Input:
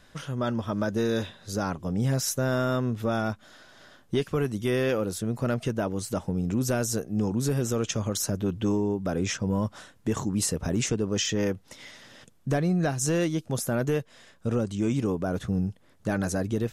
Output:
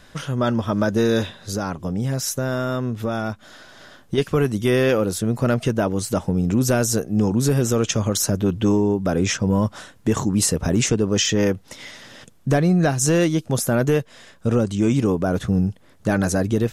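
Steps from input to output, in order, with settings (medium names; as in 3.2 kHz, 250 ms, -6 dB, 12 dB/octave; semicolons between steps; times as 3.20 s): 1.37–4.18 s: compression 2:1, threshold -32 dBFS, peak gain reduction 6 dB; trim +7.5 dB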